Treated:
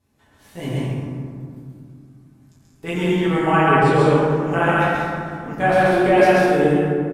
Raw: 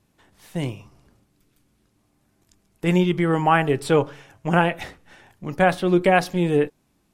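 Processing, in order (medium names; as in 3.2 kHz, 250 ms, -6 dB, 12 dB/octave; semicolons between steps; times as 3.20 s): 3.56–3.99 s: low-pass 4 kHz -> 9.7 kHz 12 dB/octave; loudspeakers at several distances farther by 46 m -1 dB, 64 m -4 dB; reverberation RT60 2.3 s, pre-delay 6 ms, DRR -9 dB; trim -8.5 dB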